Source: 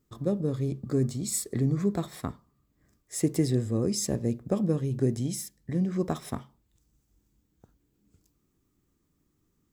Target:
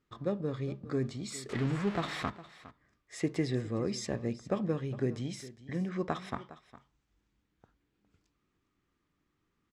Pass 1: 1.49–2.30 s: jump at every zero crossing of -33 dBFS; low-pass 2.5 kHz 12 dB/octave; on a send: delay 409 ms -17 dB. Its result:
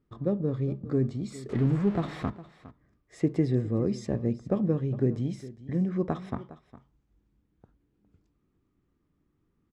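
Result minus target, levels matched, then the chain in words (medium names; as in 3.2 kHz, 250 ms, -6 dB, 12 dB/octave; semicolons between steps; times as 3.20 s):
1 kHz band -6.5 dB
1.49–2.30 s: jump at every zero crossing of -33 dBFS; low-pass 2.5 kHz 12 dB/octave; tilt shelf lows -8 dB, about 830 Hz; on a send: delay 409 ms -17 dB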